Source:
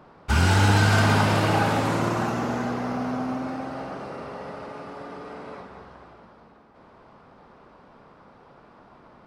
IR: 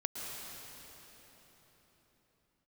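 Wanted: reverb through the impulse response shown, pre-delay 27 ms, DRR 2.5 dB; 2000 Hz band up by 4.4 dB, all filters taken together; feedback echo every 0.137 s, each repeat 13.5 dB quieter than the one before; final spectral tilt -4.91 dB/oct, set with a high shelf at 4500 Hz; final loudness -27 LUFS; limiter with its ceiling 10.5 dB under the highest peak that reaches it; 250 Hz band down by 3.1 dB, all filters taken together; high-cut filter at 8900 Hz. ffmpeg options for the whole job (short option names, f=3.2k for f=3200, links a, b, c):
-filter_complex "[0:a]lowpass=8.9k,equalizer=f=250:t=o:g=-4,equalizer=f=2k:t=o:g=5.5,highshelf=f=4.5k:g=5.5,alimiter=limit=-16.5dB:level=0:latency=1,aecho=1:1:137|274:0.211|0.0444,asplit=2[a][b];[1:a]atrim=start_sample=2205,adelay=27[c];[b][c]afir=irnorm=-1:irlink=0,volume=-5dB[d];[a][d]amix=inputs=2:normalize=0,volume=-1dB"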